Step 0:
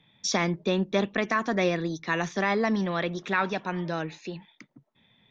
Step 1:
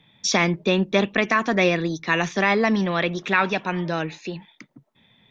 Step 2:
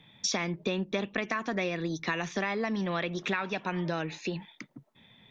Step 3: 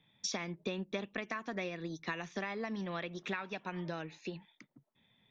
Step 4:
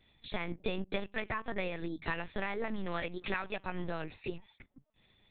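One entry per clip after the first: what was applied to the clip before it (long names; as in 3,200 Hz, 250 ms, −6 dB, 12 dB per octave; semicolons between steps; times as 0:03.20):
dynamic equaliser 2,600 Hz, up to +6 dB, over −47 dBFS, Q 2.3; level +5 dB
downward compressor 6 to 1, threshold −28 dBFS, peak gain reduction 13.5 dB
expander for the loud parts 1.5 to 1, over −40 dBFS; level −6 dB
linear-prediction vocoder at 8 kHz pitch kept; level +3.5 dB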